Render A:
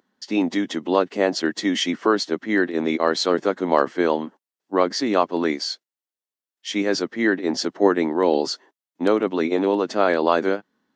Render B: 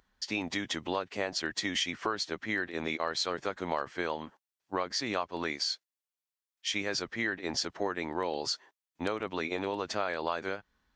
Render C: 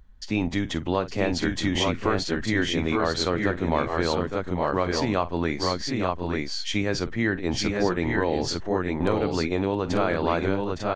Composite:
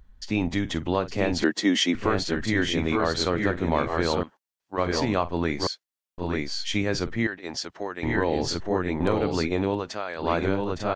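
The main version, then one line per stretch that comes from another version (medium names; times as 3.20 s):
C
1.44–1.95 s: from A
4.23–4.78 s: from B
5.67–6.18 s: from B
7.27–8.03 s: from B
9.82–10.23 s: from B, crossfade 0.16 s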